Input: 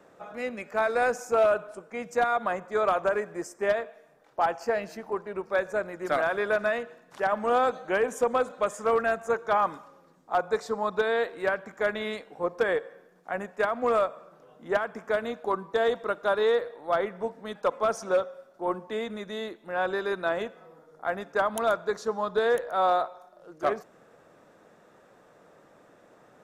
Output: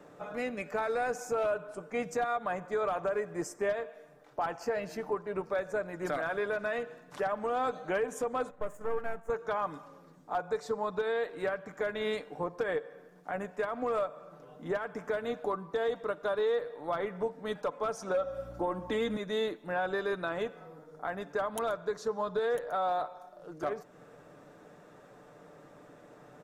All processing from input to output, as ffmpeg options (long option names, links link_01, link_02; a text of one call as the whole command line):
ffmpeg -i in.wav -filter_complex "[0:a]asettb=1/sr,asplit=3[link_01][link_02][link_03];[link_01]atrim=end=8.504[link_04];[link_02]atrim=start=8.5:end=9.3,asetpts=PTS-STARTPTS,afade=type=in:duration=0.004:curve=qsin,afade=type=out:start_time=0.796:duration=0.004:curve=qsin,aeval=exprs='if(lt(val(0),0),0.251*val(0),val(0))':channel_layout=same,agate=range=-6dB:threshold=-44dB:ratio=16:release=100:detection=peak,equalizer=frequency=4600:width_type=o:width=1.6:gain=-14.5[link_05];[link_03]atrim=start=9.296[link_06];[link_04][link_05]acrossfade=duration=0.004:curve1=hsin:curve2=qsin[link_07];[link_07][link_06]acrossfade=duration=0.004:curve1=qsin:curve2=hsin,asettb=1/sr,asplit=3[link_08][link_09][link_10];[link_08]atrim=end=18.144[link_11];[link_09]atrim=start=18.14:end=19.17,asetpts=PTS-STARTPTS,afade=type=in:duration=0.004:curve=qsin,afade=type=out:start_time=1.026:duration=0.004:curve=qsin,aecho=1:1:3.7:0.61,atrim=end_sample=45423,acontrast=54,aeval=exprs='val(0)+0.00316*(sin(2*PI*60*n/s)+sin(2*PI*2*60*n/s)/2+sin(2*PI*3*60*n/s)/3+sin(2*PI*4*60*n/s)/4+sin(2*PI*5*60*n/s)/5)':channel_layout=same[link_12];[link_10]atrim=start=19.166[link_13];[link_11][link_12]acrossfade=duration=0.004:curve1=hsin:curve2=qsin[link_14];[link_14][link_13]acrossfade=duration=0.004:curve1=qsin:curve2=hsin,lowshelf=frequency=320:gain=5.5,aecho=1:1:6.8:0.4,alimiter=limit=-23dB:level=0:latency=1:release=304" out.wav